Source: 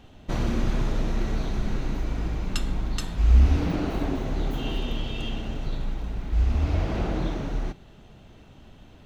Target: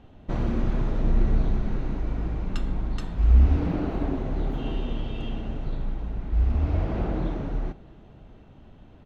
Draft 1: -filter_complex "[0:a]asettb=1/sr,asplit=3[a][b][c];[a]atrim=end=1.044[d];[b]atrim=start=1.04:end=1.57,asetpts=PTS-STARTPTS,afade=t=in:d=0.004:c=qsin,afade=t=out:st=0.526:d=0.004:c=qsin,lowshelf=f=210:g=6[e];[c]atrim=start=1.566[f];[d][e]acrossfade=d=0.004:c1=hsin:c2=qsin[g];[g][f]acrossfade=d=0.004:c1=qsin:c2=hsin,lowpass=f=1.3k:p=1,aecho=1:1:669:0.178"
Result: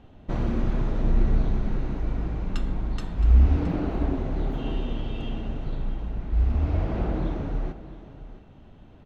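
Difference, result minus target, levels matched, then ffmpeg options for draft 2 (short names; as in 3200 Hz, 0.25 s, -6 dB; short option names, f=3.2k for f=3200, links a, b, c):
echo-to-direct +10.5 dB
-filter_complex "[0:a]asettb=1/sr,asplit=3[a][b][c];[a]atrim=end=1.044[d];[b]atrim=start=1.04:end=1.57,asetpts=PTS-STARTPTS,afade=t=in:d=0.004:c=qsin,afade=t=out:st=0.526:d=0.004:c=qsin,lowshelf=f=210:g=6[e];[c]atrim=start=1.566[f];[d][e]acrossfade=d=0.004:c1=hsin:c2=qsin[g];[g][f]acrossfade=d=0.004:c1=qsin:c2=hsin,lowpass=f=1.3k:p=1,aecho=1:1:669:0.0531"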